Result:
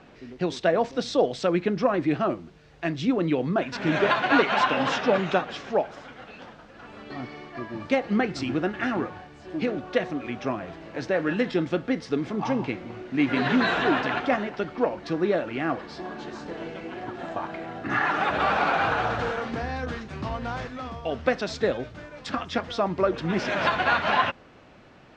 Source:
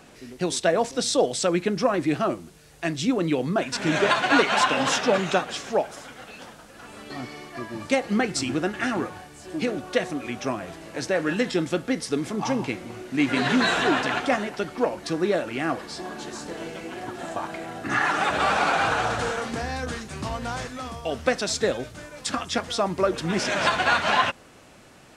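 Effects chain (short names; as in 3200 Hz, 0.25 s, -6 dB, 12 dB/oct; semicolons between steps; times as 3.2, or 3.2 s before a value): air absorption 200 m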